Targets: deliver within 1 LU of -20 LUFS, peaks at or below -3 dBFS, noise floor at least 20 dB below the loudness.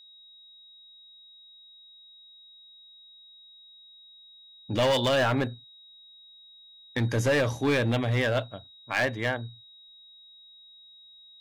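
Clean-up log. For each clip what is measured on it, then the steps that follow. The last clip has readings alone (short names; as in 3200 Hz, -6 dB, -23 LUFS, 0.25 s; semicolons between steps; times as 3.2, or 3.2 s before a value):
clipped 1.5%; flat tops at -19.5 dBFS; steady tone 3800 Hz; tone level -50 dBFS; loudness -26.5 LUFS; peak -19.5 dBFS; loudness target -20.0 LUFS
-> clip repair -19.5 dBFS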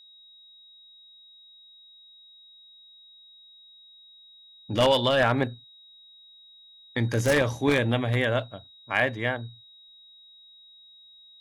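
clipped 0.0%; steady tone 3800 Hz; tone level -50 dBFS
-> notch 3800 Hz, Q 30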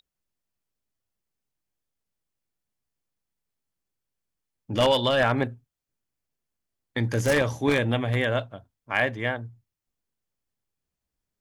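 steady tone none; loudness -25.0 LUFS; peak -10.0 dBFS; loudness target -20.0 LUFS
-> gain +5 dB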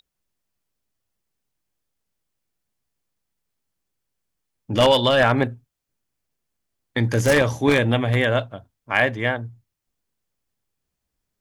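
loudness -20.0 LUFS; peak -5.0 dBFS; noise floor -81 dBFS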